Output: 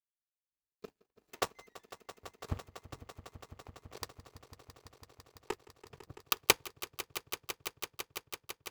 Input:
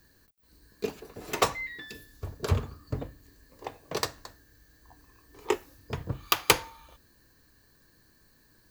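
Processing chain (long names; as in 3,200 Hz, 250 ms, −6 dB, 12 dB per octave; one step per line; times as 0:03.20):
power curve on the samples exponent 2
echo that builds up and dies away 167 ms, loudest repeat 5, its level −16 dB
level +1.5 dB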